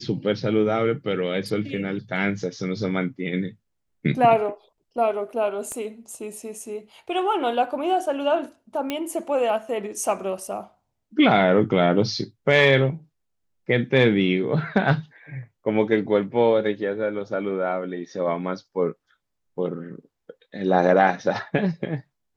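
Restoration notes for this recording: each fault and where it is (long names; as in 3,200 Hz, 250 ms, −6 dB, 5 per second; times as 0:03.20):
0:05.72: click −20 dBFS
0:08.90: click −12 dBFS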